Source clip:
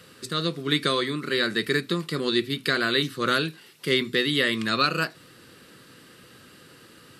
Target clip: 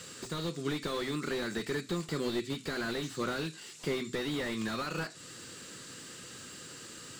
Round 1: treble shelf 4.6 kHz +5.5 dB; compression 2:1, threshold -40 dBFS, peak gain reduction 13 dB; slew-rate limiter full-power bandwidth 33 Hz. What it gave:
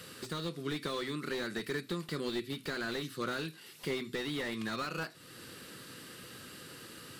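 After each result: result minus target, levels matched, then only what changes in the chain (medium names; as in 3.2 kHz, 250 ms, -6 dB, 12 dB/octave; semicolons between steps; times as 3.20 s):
8 kHz band -4.0 dB; compression: peak gain reduction +3 dB
add first: resonant low-pass 7.3 kHz, resonance Q 4.9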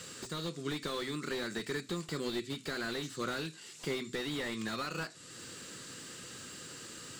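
compression: peak gain reduction +3.5 dB
change: compression 2:1, threshold -32.5 dBFS, peak gain reduction 10 dB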